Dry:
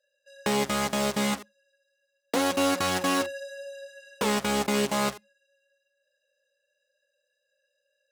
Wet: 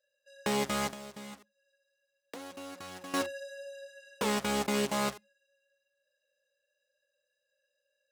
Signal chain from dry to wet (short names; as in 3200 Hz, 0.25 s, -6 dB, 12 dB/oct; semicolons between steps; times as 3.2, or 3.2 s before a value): 0.9–3.14 compressor 3:1, threshold -43 dBFS, peak gain reduction 16 dB; gain -4.5 dB